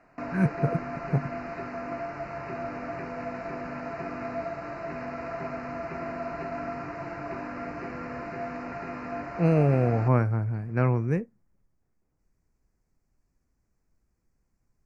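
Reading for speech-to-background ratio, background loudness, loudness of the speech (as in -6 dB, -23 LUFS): 9.0 dB, -35.5 LUFS, -26.5 LUFS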